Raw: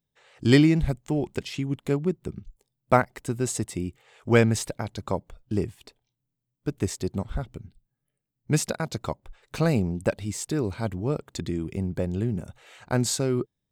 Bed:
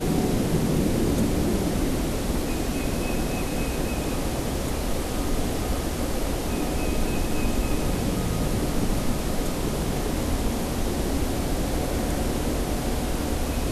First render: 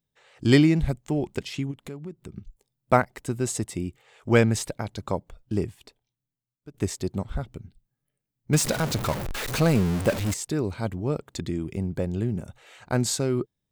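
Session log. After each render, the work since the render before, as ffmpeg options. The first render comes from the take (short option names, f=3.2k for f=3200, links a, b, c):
-filter_complex "[0:a]asplit=3[a][b][c];[a]afade=t=out:st=1.7:d=0.02[d];[b]acompressor=threshold=-37dB:ratio=3:attack=3.2:release=140:knee=1:detection=peak,afade=t=in:st=1.7:d=0.02,afade=t=out:st=2.35:d=0.02[e];[c]afade=t=in:st=2.35:d=0.02[f];[d][e][f]amix=inputs=3:normalize=0,asettb=1/sr,asplit=3[g][h][i];[g]atrim=end=8.534[j];[h]atrim=start=8.53:end=10.34,asetpts=PTS-STARTPTS,afade=t=in:d=0.004:c=qsin,afade=t=out:st=1.806:d=0.004:c=qsin,aeval=exprs='val(0)+0.5*0.0562*sgn(val(0))':c=same[k];[i]atrim=start=10.336[l];[j][k]acrossfade=d=0.004:c1=hsin:c2=qsin[m];[m][l]acrossfade=d=0.004:c1=qsin:c2=hsin,asplit=2[n][o];[n]atrim=end=6.74,asetpts=PTS-STARTPTS,afade=t=out:st=5.68:d=1.06:silence=0.11885[p];[o]atrim=start=6.74,asetpts=PTS-STARTPTS,afade=t=in:d=0.004:c=hsin:silence=0.11885[q];[p][q]concat=n=2:v=0:a=1"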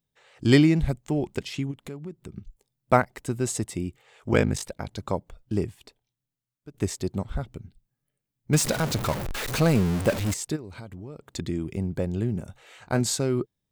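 -filter_complex "[0:a]asplit=3[a][b][c];[a]afade=t=out:st=4.31:d=0.02[d];[b]aeval=exprs='val(0)*sin(2*PI*25*n/s)':c=same,afade=t=in:st=4.31:d=0.02,afade=t=out:st=4.89:d=0.02[e];[c]afade=t=in:st=4.89:d=0.02[f];[d][e][f]amix=inputs=3:normalize=0,asplit=3[g][h][i];[g]afade=t=out:st=10.55:d=0.02[j];[h]acompressor=threshold=-36dB:ratio=6:attack=3.2:release=140:knee=1:detection=peak,afade=t=in:st=10.55:d=0.02,afade=t=out:st=11.33:d=0.02[k];[i]afade=t=in:st=11.33:d=0.02[l];[j][k][l]amix=inputs=3:normalize=0,asettb=1/sr,asplit=3[m][n][o];[m]atrim=end=12.474[p];[n]atrim=start=12.47:end=13.01,asetpts=PTS-STARTPTS,afade=t=in:d=0.004:c=qsin,afade=t=out:st=0.536:d=0.004:c=qsin,asplit=2[q][r];[r]adelay=21,volume=-11.5dB[s];[q][s]amix=inputs=2:normalize=0,atrim=end_sample=23814[t];[o]atrim=start=13.006[u];[p][t]acrossfade=d=0.004:c1=hsin:c2=qsin[v];[v][u]acrossfade=d=0.004:c1=qsin:c2=hsin"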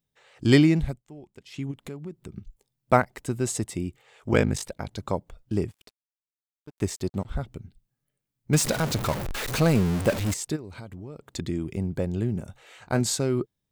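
-filter_complex "[0:a]asettb=1/sr,asplit=3[a][b][c];[a]atrim=end=5.684[d];[b]atrim=start=5.68:end=7.27,asetpts=PTS-STARTPTS,afade=t=in:d=0.004:c=qsin,afade=t=out:st=1.586:d=0.004:c=qsin,aeval=exprs='sgn(val(0))*max(abs(val(0))-0.00251,0)':c=same[e];[c]atrim=start=7.266[f];[d][e]acrossfade=d=0.004:c1=hsin:c2=qsin[g];[g][f]acrossfade=d=0.004:c1=qsin:c2=hsin,asplit=3[h][i][j];[h]atrim=end=1.04,asetpts=PTS-STARTPTS,afade=t=out:st=0.76:d=0.28:silence=0.11885[k];[i]atrim=start=1.04:end=1.44,asetpts=PTS-STARTPTS,volume=-18.5dB[l];[j]atrim=start=1.44,asetpts=PTS-STARTPTS,afade=t=in:d=0.28:silence=0.11885[m];[k][l][m]concat=n=3:v=0:a=1"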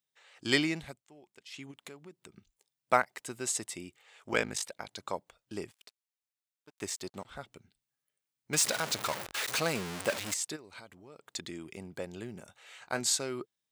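-af "highpass=f=1.3k:p=1,equalizer=f=16k:t=o:w=0.37:g=-9.5"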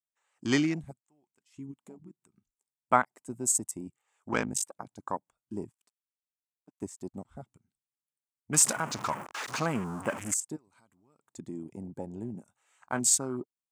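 -af "afwtdn=0.01,equalizer=f=125:t=o:w=1:g=4,equalizer=f=250:t=o:w=1:g=7,equalizer=f=500:t=o:w=1:g=-5,equalizer=f=1k:t=o:w=1:g=7,equalizer=f=2k:t=o:w=1:g=-3,equalizer=f=4k:t=o:w=1:g=-9,equalizer=f=8k:t=o:w=1:g=10"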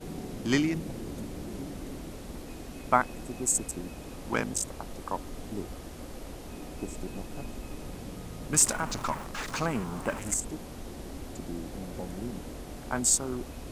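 -filter_complex "[1:a]volume=-15.5dB[a];[0:a][a]amix=inputs=2:normalize=0"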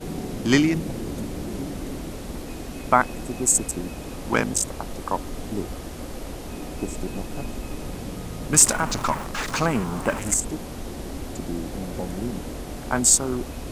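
-af "volume=7.5dB,alimiter=limit=-2dB:level=0:latency=1"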